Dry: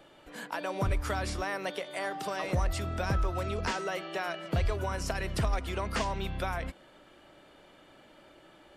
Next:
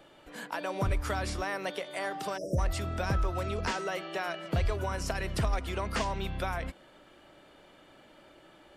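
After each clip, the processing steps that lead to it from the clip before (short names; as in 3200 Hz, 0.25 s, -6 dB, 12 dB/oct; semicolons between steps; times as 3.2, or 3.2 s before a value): spectral delete 2.37–2.58, 700–4900 Hz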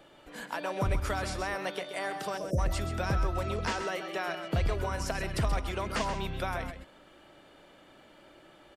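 echo 0.13 s -9.5 dB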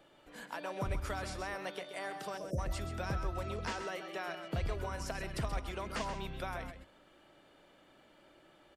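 notches 50/100 Hz; gain -6.5 dB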